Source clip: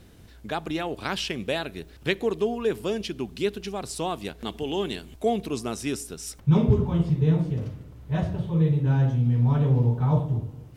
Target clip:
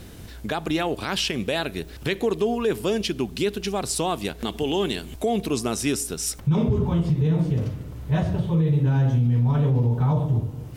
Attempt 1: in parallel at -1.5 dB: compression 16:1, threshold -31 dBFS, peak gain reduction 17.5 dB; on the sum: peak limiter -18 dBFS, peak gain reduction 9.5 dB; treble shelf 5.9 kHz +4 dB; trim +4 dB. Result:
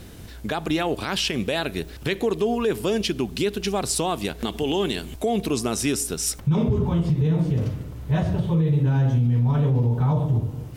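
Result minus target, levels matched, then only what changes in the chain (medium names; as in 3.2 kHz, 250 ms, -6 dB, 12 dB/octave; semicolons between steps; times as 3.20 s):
compression: peak gain reduction -7.5 dB
change: compression 16:1, threshold -39 dBFS, peak gain reduction 25 dB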